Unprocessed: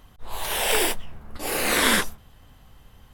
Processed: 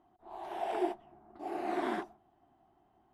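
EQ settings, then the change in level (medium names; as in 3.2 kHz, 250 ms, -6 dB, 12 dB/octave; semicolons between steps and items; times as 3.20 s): two resonant band-passes 500 Hz, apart 1 oct; 0.0 dB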